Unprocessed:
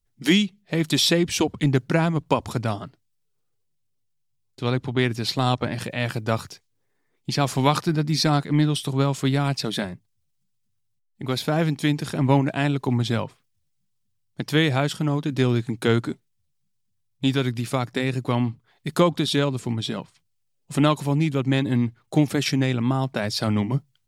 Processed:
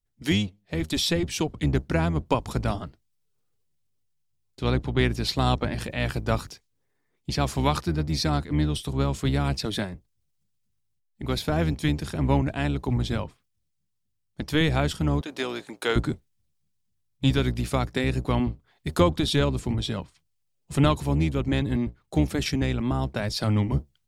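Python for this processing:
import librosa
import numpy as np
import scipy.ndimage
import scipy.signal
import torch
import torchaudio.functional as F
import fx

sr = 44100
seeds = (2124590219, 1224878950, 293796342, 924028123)

y = fx.octave_divider(x, sr, octaves=1, level_db=-3.0)
y = fx.highpass(y, sr, hz=510.0, slope=12, at=(15.21, 15.96))
y = fx.rider(y, sr, range_db=10, speed_s=2.0)
y = F.gain(torch.from_numpy(y), -4.0).numpy()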